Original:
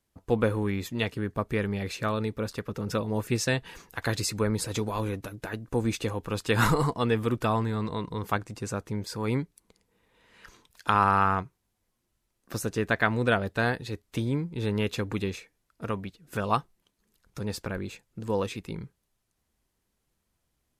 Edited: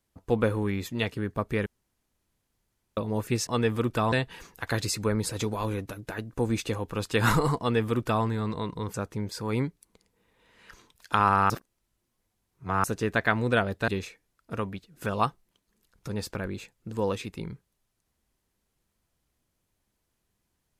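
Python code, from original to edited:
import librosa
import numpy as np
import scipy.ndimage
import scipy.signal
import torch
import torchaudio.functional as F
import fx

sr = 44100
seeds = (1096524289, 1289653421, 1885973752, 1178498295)

y = fx.edit(x, sr, fx.room_tone_fill(start_s=1.66, length_s=1.31),
    fx.duplicate(start_s=6.94, length_s=0.65, to_s=3.47),
    fx.cut(start_s=8.29, length_s=0.4),
    fx.reverse_span(start_s=11.25, length_s=1.34),
    fx.cut(start_s=13.63, length_s=1.56), tone=tone)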